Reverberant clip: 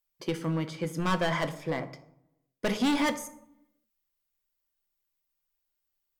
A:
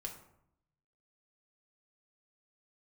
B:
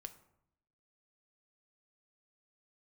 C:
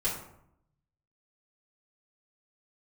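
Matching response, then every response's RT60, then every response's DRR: B; 0.75, 0.75, 0.75 seconds; 0.5, 8.0, −9.0 decibels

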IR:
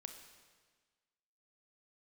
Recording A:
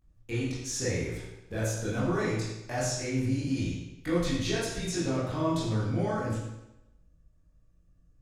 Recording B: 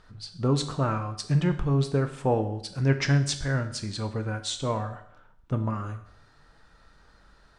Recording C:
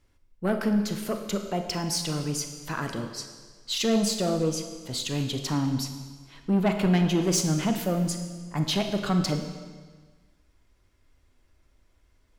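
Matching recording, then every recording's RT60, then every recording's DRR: C; 0.90, 0.70, 1.5 seconds; −9.5, 7.5, 5.5 decibels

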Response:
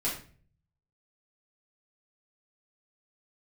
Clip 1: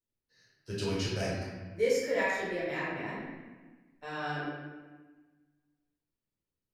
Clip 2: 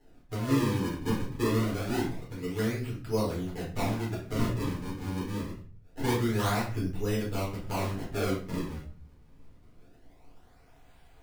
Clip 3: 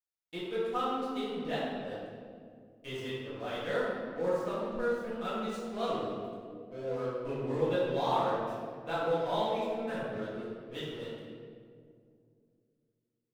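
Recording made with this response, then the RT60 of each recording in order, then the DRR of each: 2; 1.3, 0.45, 2.2 seconds; −8.0, −6.5, −11.5 decibels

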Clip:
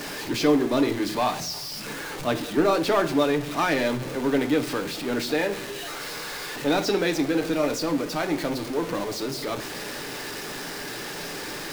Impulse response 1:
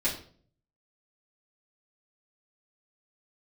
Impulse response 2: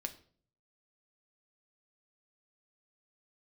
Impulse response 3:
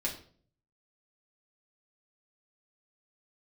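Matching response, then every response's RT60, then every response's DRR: 2; 0.50, 0.50, 0.50 seconds; −9.5, 5.0, −4.5 decibels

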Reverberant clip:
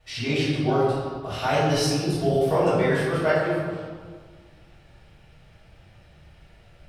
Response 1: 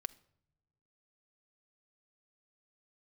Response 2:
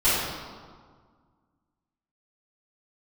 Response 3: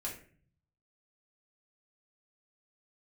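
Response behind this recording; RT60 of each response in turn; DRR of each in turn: 2; non-exponential decay, 1.7 s, 0.45 s; 10.0, −14.0, −4.5 decibels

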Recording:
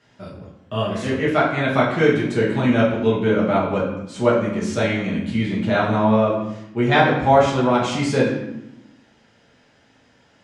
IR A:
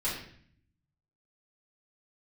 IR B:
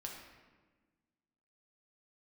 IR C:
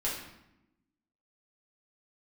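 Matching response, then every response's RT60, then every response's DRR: C; 0.55, 1.4, 0.85 seconds; −9.5, −1.0, −7.0 decibels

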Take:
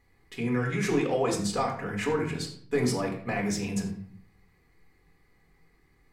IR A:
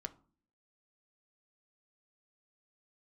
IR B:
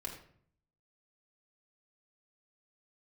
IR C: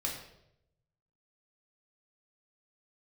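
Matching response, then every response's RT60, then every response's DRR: B; 0.45, 0.60, 0.80 seconds; 7.5, −0.5, −2.0 decibels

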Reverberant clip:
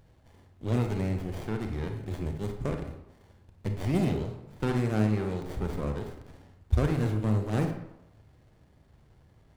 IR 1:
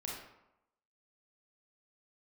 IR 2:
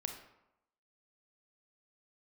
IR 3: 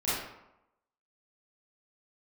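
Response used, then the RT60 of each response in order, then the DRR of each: 2; 0.90, 0.90, 0.90 seconds; −3.5, 4.5, −12.0 decibels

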